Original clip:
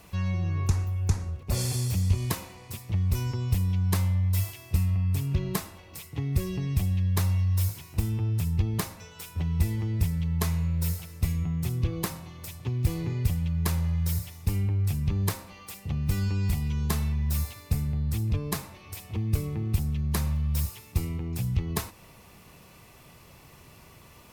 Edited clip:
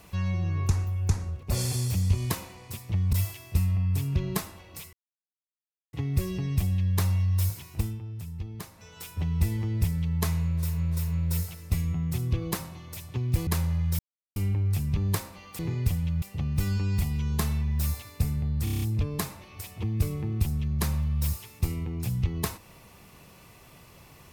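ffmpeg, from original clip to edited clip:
ffmpeg -i in.wav -filter_complex "[0:a]asplit=18[link_01][link_02][link_03][link_04][link_05][link_06][link_07][link_08][link_09][link_10][link_11][link_12][link_13][link_14][link_15][link_16][link_17][link_18];[link_01]atrim=end=3.132[link_19];[link_02]atrim=start=4.318:end=6.12,asetpts=PTS-STARTPTS,afade=type=out:start_time=1.798:duration=0.004:curve=hsin,apad=pad_dur=1[link_20];[link_03]atrim=start=6.12:end=8.19,asetpts=PTS-STARTPTS,afade=type=in:duration=0.004:curve=hsin,afade=type=out:start_time=1.83:duration=0.24:silence=0.298538[link_21];[link_04]atrim=start=8.19:end=8.92,asetpts=PTS-STARTPTS,volume=-10.5dB[link_22];[link_05]atrim=start=8.92:end=11,asetpts=PTS-STARTPTS,afade=type=in:duration=0.24:silence=0.298538[link_23];[link_06]atrim=start=10.42:end=11[link_24];[link_07]atrim=start=10.42:end=12.982[link_25];[link_08]atrim=start=13.608:end=14.13,asetpts=PTS-STARTPTS,afade=type=out:start_time=0.518:duration=0.004:curve=hsin[link_26];[link_09]atrim=start=14.13:end=14.5,asetpts=PTS-STARTPTS,volume=0[link_27];[link_10]atrim=start=14.5:end=15.732,asetpts=PTS-STARTPTS,afade=type=in:duration=0.004:curve=hsin[link_28];[link_11]atrim=start=12.978:end=13.612[link_29];[link_12]atrim=start=15.728:end=18.182[link_30];[link_13]atrim=start=18.148:end=18.182[link_31];[link_14]atrim=start=18.148:end=18.182[link_32];[link_15]atrim=start=18.148:end=18.182[link_33];[link_16]atrim=start=18.148:end=18.182[link_34];[link_17]atrim=start=18.148:end=18.182[link_35];[link_18]atrim=start=18.148[link_36];[link_20][link_21][link_22][link_23]concat=n=4:v=0:a=1[link_37];[link_19][link_37]acrossfade=duration=0.004:curve1=hsin:curve2=hsin[link_38];[link_38][link_24]acrossfade=duration=0.24:curve1=tri:curve2=tri[link_39];[link_39][link_25]acrossfade=duration=0.24:curve1=tri:curve2=tri[link_40];[link_26][link_27][link_28]concat=n=3:v=0:a=1[link_41];[link_40][link_41]acrossfade=duration=0.004:curve1=hsin:curve2=hsin[link_42];[link_42][link_29]acrossfade=duration=0.004:curve1=hsin:curve2=hsin[link_43];[link_43][link_30]acrossfade=duration=0.004:curve1=hsin:curve2=hsin[link_44];[link_44][link_31]acrossfade=duration=0.004:curve1=hsin:curve2=hsin[link_45];[link_45][link_32]acrossfade=duration=0.004:curve1=hsin:curve2=hsin[link_46];[link_46][link_33]acrossfade=duration=0.004:curve1=hsin:curve2=hsin[link_47];[link_47][link_34]acrossfade=duration=0.004:curve1=hsin:curve2=hsin[link_48];[link_48][link_35]acrossfade=duration=0.004:curve1=hsin:curve2=hsin[link_49];[link_49][link_36]acrossfade=duration=0.004:curve1=hsin:curve2=hsin" out.wav

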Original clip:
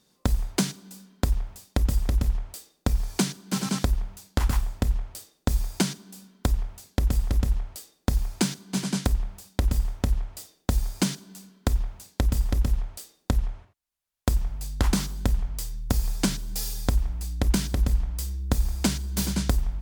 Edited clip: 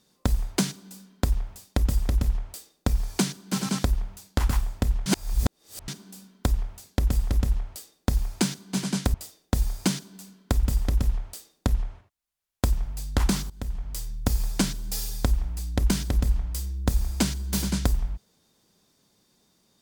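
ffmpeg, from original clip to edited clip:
ffmpeg -i in.wav -filter_complex "[0:a]asplit=6[link_01][link_02][link_03][link_04][link_05][link_06];[link_01]atrim=end=5.062[link_07];[link_02]atrim=start=5.058:end=5.882,asetpts=PTS-STARTPTS,areverse[link_08];[link_03]atrim=start=5.878:end=9.142[link_09];[link_04]atrim=start=10.298:end=11.792[link_10];[link_05]atrim=start=12.268:end=15.14,asetpts=PTS-STARTPTS,afade=type=out:start_time=2.868:duration=0.004:curve=hsin:silence=0.125893[link_11];[link_06]atrim=start=15.14,asetpts=PTS-STARTPTS,afade=type=in:duration=0.53:silence=0.125893[link_12];[link_07][link_08]acrossfade=duration=0.004:curve1=hsin:curve2=hsin[link_13];[link_13][link_09]acrossfade=duration=0.004:curve1=hsin:curve2=hsin[link_14];[link_14][link_10]acrossfade=duration=0.004:curve1=hsin:curve2=hsin[link_15];[link_11][link_12]concat=n=2:v=0:a=1[link_16];[link_15][link_16]acrossfade=duration=0.004:curve1=hsin:curve2=hsin" out.wav

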